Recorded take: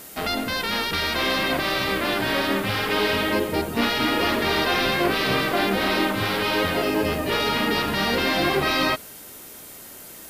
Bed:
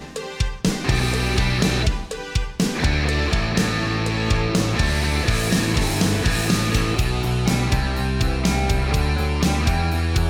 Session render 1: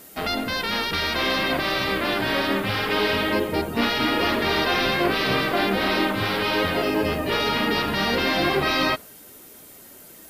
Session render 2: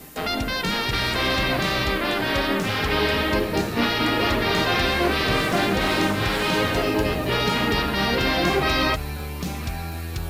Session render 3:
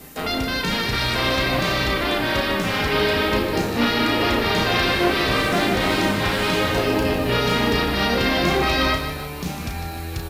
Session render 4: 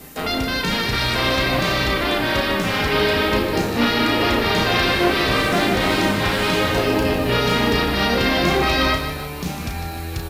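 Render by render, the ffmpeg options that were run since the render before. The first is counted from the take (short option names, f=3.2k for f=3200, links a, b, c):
-af "afftdn=nr=6:nf=-42"
-filter_complex "[1:a]volume=-10dB[a];[0:a][a]amix=inputs=2:normalize=0"
-filter_complex "[0:a]asplit=2[a][b];[b]adelay=34,volume=-6dB[c];[a][c]amix=inputs=2:normalize=0,aecho=1:1:152|304|456|608|760:0.355|0.153|0.0656|0.0282|0.0121"
-af "volume=1.5dB"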